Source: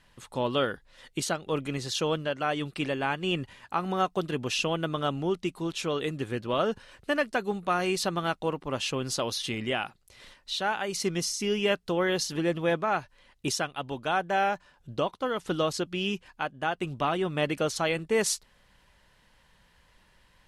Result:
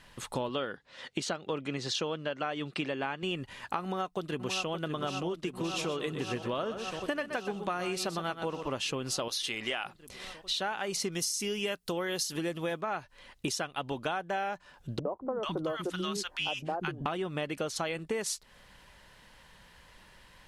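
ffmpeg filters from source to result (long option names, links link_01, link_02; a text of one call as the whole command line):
ffmpeg -i in.wav -filter_complex "[0:a]asettb=1/sr,asplit=3[link_01][link_02][link_03];[link_01]atrim=end=0.494[link_04];[link_02]atrim=start=0.49:end=3.23,asetpts=PTS-STARTPTS,afade=type=in:duration=0.004:curve=qsin,afade=type=out:start_time=2.736:duration=0.004:curve=qsin,highpass=120,lowpass=5900[link_05];[link_03]atrim=start=3.226[link_06];[link_04][link_05]acrossfade=duration=0.004:curve1=hsin:curve2=qsin[link_07];[link_07][link_06]acrossfade=duration=0.004:curve1=qsin:curve2=hsin,asplit=2[link_08][link_09];[link_09]afade=type=in:start_time=3.82:duration=0.01,afade=type=out:start_time=4.71:duration=0.01,aecho=0:1:570|1140|1710|2280|2850|3420|3990|4560|5130|5700|6270|6840:0.398107|0.29858|0.223935|0.167951|0.125964|0.0944727|0.0708545|0.0531409|0.0398557|0.0298918|0.0224188|0.0168141[link_10];[link_08][link_10]amix=inputs=2:normalize=0,asplit=3[link_11][link_12][link_13];[link_11]afade=type=out:start_time=5.72:duration=0.02[link_14];[link_12]aecho=1:1:124:0.282,afade=type=in:start_time=5.72:duration=0.02,afade=type=out:start_time=8.74:duration=0.02[link_15];[link_13]afade=type=in:start_time=8.74:duration=0.02[link_16];[link_14][link_15][link_16]amix=inputs=3:normalize=0,asettb=1/sr,asplit=3[link_17][link_18][link_19];[link_17]atrim=end=9.284[link_20];[link_18]atrim=start=9.28:end=9.85,asetpts=PTS-STARTPTS,afade=type=in:duration=0.004:curve=qsin,afade=type=out:start_time=0.566:duration=0.004:curve=qsin,equalizer=frequency=130:width=0.38:gain=-14.5[link_21];[link_19]atrim=start=9.846[link_22];[link_20][link_21]acrossfade=duration=0.004:curve1=hsin:curve2=qsin[link_23];[link_23][link_22]acrossfade=duration=0.004:curve1=qsin:curve2=hsin,asettb=1/sr,asplit=3[link_24][link_25][link_26];[link_24]atrim=end=11.124[link_27];[link_25]atrim=start=11.12:end=12.81,asetpts=PTS-STARTPTS,afade=type=in:duration=0.004:curve=qsin,afade=type=out:start_time=1.686:duration=0.004:curve=qsin,aemphasis=mode=production:type=50kf[link_28];[link_26]atrim=start=12.806[link_29];[link_27][link_28]acrossfade=duration=0.004:curve1=hsin:curve2=qsin[link_30];[link_30][link_29]acrossfade=duration=0.004:curve1=qsin:curve2=hsin,asettb=1/sr,asplit=3[link_31][link_32][link_33];[link_31]atrim=end=14.994[link_34];[link_32]atrim=start=14.99:end=17.06,asetpts=PTS-STARTPTS,afade=type=in:duration=0.004:curve=qsin,afade=type=out:start_time=2.066:duration=0.004:curve=qsin,acrossover=split=250|1000[link_35][link_36][link_37];[link_36]adelay=60[link_38];[link_37]adelay=440[link_39];[link_35][link_38][link_39]amix=inputs=3:normalize=0,atrim=end_sample=91287[link_40];[link_33]atrim=start=17.056[link_41];[link_34][link_40]acrossfade=duration=0.004:curve1=hsin:curve2=qsin[link_42];[link_42][link_41]acrossfade=duration=0.004:curve1=qsin:curve2=hsin,acompressor=threshold=-36dB:ratio=12,lowshelf=frequency=160:gain=-3.5,volume=6.5dB" out.wav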